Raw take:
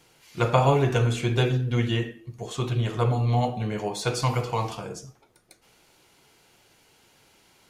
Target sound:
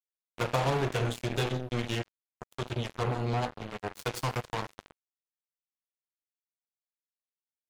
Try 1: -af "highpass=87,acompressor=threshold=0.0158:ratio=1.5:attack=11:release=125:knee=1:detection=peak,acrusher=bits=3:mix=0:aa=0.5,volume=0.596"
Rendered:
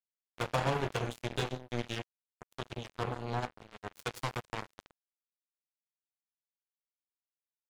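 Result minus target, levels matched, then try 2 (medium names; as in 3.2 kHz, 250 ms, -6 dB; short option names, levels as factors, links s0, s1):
compression: peak gain reduction +3 dB
-af "highpass=87,acompressor=threshold=0.0422:ratio=1.5:attack=11:release=125:knee=1:detection=peak,acrusher=bits=3:mix=0:aa=0.5,volume=0.596"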